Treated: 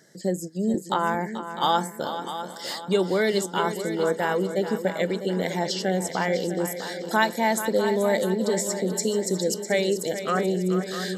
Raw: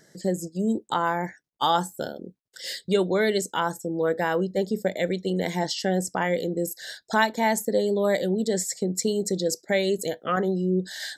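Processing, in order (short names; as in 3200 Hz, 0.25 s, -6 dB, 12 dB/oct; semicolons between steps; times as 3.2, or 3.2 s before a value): HPF 110 Hz; multi-head echo 0.217 s, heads second and third, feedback 46%, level -11 dB; 0.74–1.15 three-band squash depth 40%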